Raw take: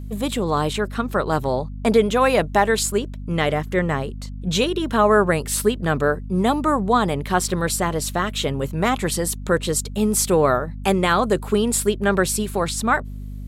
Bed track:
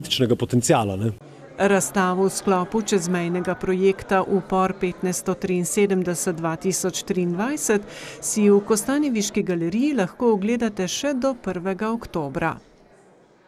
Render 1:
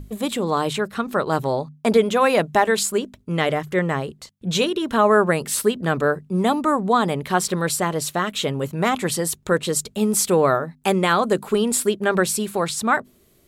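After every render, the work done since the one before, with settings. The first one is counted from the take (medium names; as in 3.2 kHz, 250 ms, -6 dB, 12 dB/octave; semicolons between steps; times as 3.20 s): hum notches 50/100/150/200/250 Hz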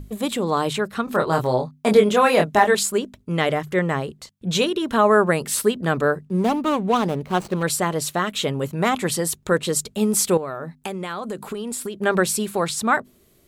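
1.05–2.75 s: doubling 24 ms -4 dB; 6.25–7.63 s: median filter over 25 samples; 10.37–11.96 s: compression 10:1, threshold -25 dBFS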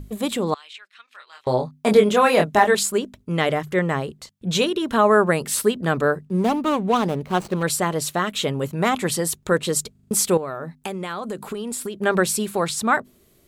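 0.54–1.47 s: ladder band-pass 3 kHz, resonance 35%; 9.91 s: stutter in place 0.04 s, 5 plays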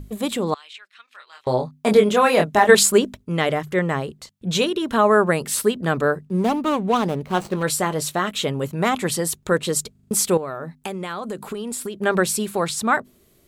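2.69–3.17 s: gain +6.5 dB; 7.33–8.31 s: doubling 20 ms -12 dB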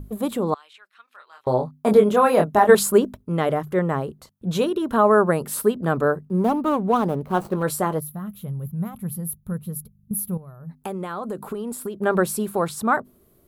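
7.99–10.70 s: time-frequency box 220–10000 Hz -19 dB; high-order bell 3.9 kHz -10 dB 2.5 oct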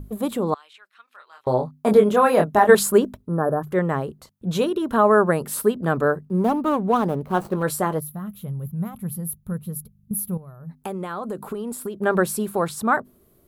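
3.26–3.60 s: spectral replace 1.8–9.3 kHz before; dynamic bell 1.7 kHz, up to +3 dB, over -40 dBFS, Q 5.2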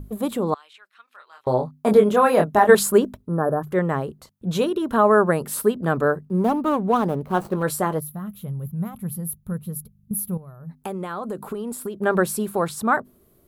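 no audible change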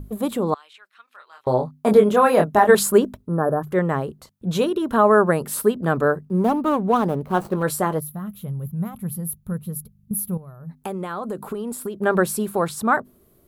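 trim +1 dB; peak limiter -3 dBFS, peak gain reduction 2.5 dB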